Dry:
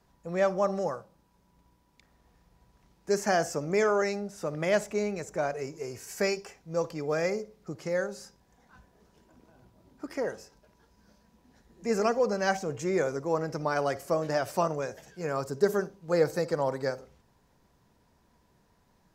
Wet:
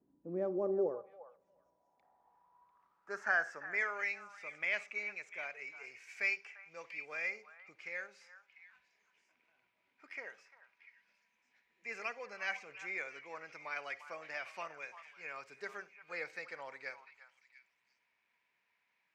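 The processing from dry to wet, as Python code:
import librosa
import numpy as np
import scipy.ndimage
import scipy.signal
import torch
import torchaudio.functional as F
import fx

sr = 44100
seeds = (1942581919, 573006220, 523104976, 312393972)

y = scipy.signal.medfilt(x, 3)
y = fx.echo_stepped(y, sr, ms=347, hz=1100.0, octaves=1.4, feedback_pct=70, wet_db=-9.5)
y = fx.filter_sweep_bandpass(y, sr, from_hz=290.0, to_hz=2300.0, start_s=0.31, end_s=4.11, q=6.0)
y = F.gain(torch.from_numpy(y), 6.0).numpy()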